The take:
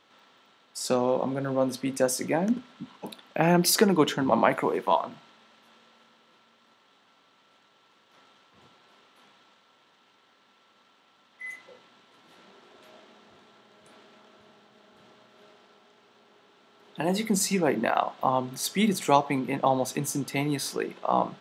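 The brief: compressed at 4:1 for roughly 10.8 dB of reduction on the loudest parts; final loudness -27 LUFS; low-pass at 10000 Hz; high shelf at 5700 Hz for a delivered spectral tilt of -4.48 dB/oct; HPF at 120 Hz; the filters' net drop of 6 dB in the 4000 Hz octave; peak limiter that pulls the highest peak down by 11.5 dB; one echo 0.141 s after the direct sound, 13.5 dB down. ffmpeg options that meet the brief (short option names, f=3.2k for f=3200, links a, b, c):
-af "highpass=120,lowpass=10k,equalizer=f=4k:t=o:g=-6,highshelf=f=5.7k:g=-4,acompressor=threshold=-29dB:ratio=4,alimiter=level_in=2dB:limit=-24dB:level=0:latency=1,volume=-2dB,aecho=1:1:141:0.211,volume=10dB"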